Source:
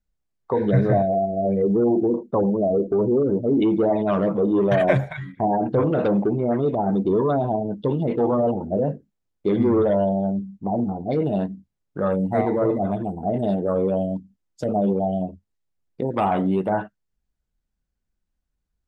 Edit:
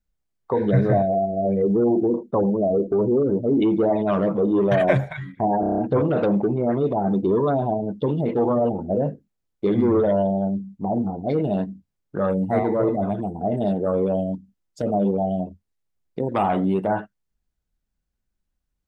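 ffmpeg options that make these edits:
-filter_complex "[0:a]asplit=7[s0][s1][s2][s3][s4][s5][s6];[s0]atrim=end=5.632[s7];[s1]atrim=start=5.598:end=5.632[s8];[s2]atrim=start=5.598:end=5.632[s9];[s3]atrim=start=5.598:end=5.632[s10];[s4]atrim=start=5.598:end=5.632[s11];[s5]atrim=start=5.598:end=5.632[s12];[s6]atrim=start=5.598[s13];[s7][s8]acrossfade=d=0.004:c1=hsin:c2=hsin[s14];[s14][s9]acrossfade=d=0.004:c1=hsin:c2=hsin[s15];[s15][s10]acrossfade=d=0.004:c1=hsin:c2=hsin[s16];[s16][s11]acrossfade=d=0.004:c1=hsin:c2=hsin[s17];[s17][s12]acrossfade=d=0.004:c1=hsin:c2=hsin[s18];[s18][s13]acrossfade=d=0.004:c1=hsin:c2=hsin"

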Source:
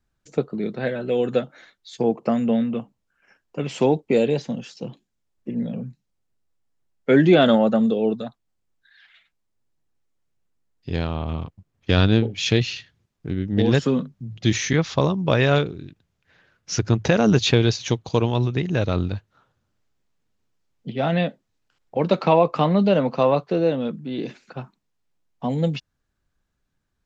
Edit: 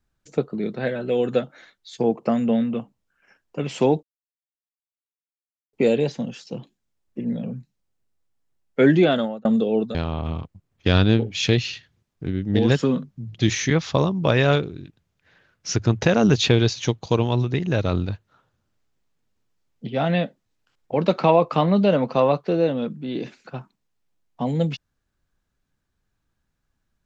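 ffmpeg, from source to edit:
-filter_complex "[0:a]asplit=4[s0][s1][s2][s3];[s0]atrim=end=4.03,asetpts=PTS-STARTPTS,afade=t=out:st=4.026:d=0.004:c=hsin,apad=pad_dur=1.7[s4];[s1]atrim=start=4.03:end=7.75,asetpts=PTS-STARTPTS,afade=t=in:d=0.004:c=hsin,afade=t=out:st=3.17:d=0.55[s5];[s2]atrim=start=7.75:end=8.252,asetpts=PTS-STARTPTS,afade=t=in:d=0.004:c=hsin[s6];[s3]atrim=start=10.978[s7];[s4][s5][s6]concat=n=3:v=0:a=1[s8];[s8][s7]acrossfade=d=0.004:c1=hsin:c2=hsin"

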